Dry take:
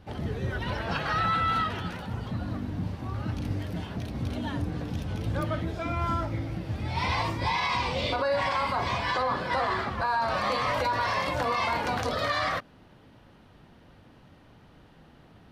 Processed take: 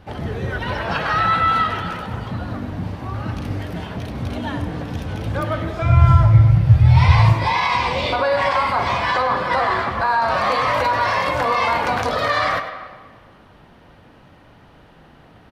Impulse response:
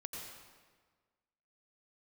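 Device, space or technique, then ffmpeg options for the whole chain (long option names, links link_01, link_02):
filtered reverb send: -filter_complex "[0:a]asettb=1/sr,asplit=3[link_01][link_02][link_03];[link_01]atrim=end=5.824[link_04];[link_02]atrim=start=5.82:end=7.33,asetpts=PTS-STARTPTS,afade=type=in:duration=0.004:curve=qsin,afade=type=out:start_time=1.506:duration=0.004:curve=qsin,lowshelf=frequency=180:width_type=q:width=3:gain=11[link_05];[link_03]atrim=start=7.326[link_06];[link_04][link_05]acrossfade=duration=0.004:curve1=hsin:curve2=qsin[link_07];[link_07][link_06]acrossfade=duration=0.004:curve1=qsin:curve2=hsin,asplit=2[link_08][link_09];[link_09]highpass=410,lowpass=3100[link_10];[1:a]atrim=start_sample=2205[link_11];[link_10][link_11]afir=irnorm=-1:irlink=0,volume=-2dB[link_12];[link_08][link_12]amix=inputs=2:normalize=0,aecho=1:1:99:0.2,volume=5.5dB"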